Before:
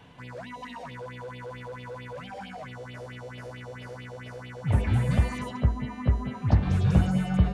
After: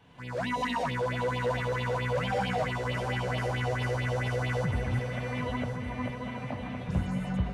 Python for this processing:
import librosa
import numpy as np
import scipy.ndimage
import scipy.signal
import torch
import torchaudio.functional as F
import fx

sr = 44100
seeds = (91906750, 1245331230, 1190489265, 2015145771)

y = fx.recorder_agc(x, sr, target_db=-16.5, rise_db_per_s=41.0, max_gain_db=30)
y = fx.cabinet(y, sr, low_hz=260.0, low_slope=12, high_hz=3600.0, hz=(260.0, 380.0, 610.0, 1500.0, 2400.0), db=(5, -10, 4, -4, 5), at=(4.99, 6.89))
y = fx.echo_heads(y, sr, ms=371, heads='second and third', feedback_pct=50, wet_db=-9.0)
y = F.gain(torch.from_numpy(y), -8.5).numpy()